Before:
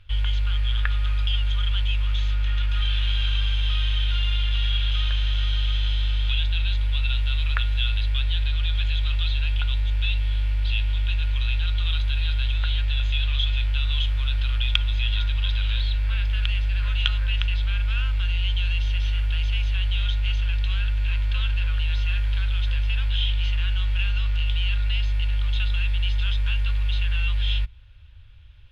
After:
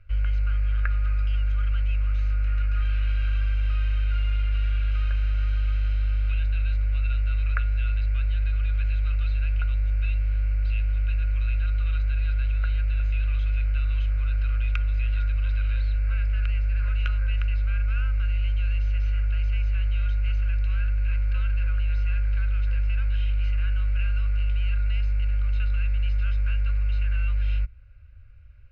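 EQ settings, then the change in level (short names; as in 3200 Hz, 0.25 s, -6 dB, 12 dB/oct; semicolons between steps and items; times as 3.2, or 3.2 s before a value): Butterworth band-stop 1800 Hz, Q 8; Bessel low-pass 3800 Hz, order 8; fixed phaser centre 920 Hz, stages 6; 0.0 dB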